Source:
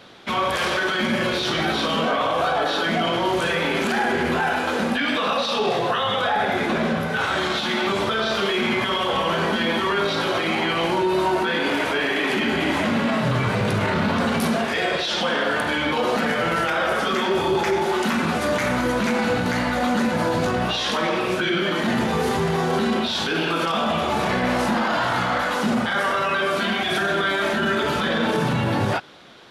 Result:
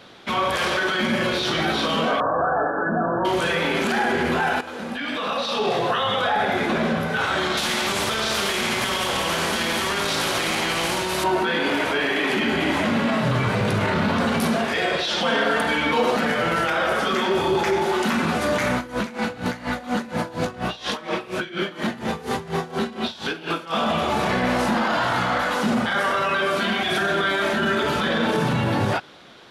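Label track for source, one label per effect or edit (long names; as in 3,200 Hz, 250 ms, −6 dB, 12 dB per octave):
2.200000	3.250000	linear-phase brick-wall low-pass 1,800 Hz
4.610000	5.790000	fade in, from −13 dB
7.570000	11.240000	every bin compressed towards the loudest bin 2 to 1
15.250000	16.110000	comb filter 4.4 ms, depth 59%
18.760000	23.720000	tremolo with a sine in dB 4.2 Hz, depth 18 dB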